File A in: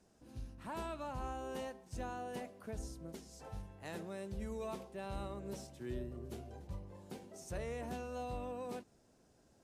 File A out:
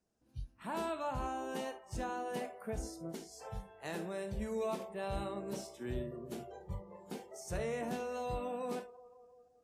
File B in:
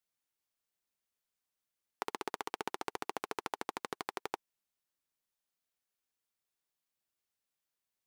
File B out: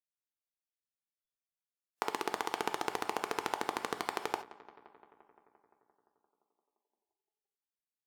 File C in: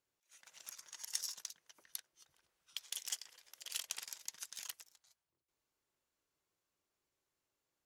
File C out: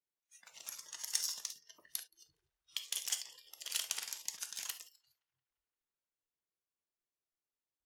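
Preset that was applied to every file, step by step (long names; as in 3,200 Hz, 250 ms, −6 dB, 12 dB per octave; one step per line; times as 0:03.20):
on a send: feedback echo with a low-pass in the loop 173 ms, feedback 76%, low-pass 3,900 Hz, level −19 dB
on the sum: reverb whose tail is shaped and stops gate 90 ms flat, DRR 8 dB
noise reduction from a noise print of the clip's start 18 dB
level +4 dB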